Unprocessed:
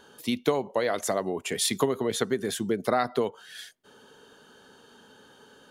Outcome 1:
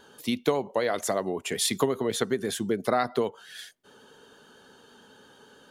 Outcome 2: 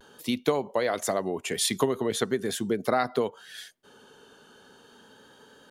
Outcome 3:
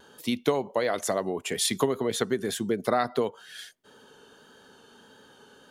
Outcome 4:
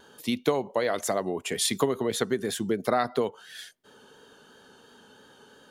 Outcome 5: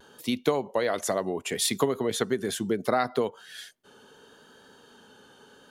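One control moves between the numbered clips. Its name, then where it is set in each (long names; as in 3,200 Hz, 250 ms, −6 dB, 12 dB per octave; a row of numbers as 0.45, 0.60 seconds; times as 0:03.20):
pitch vibrato, speed: 9, 0.41, 1.6, 2.9, 0.71 Hertz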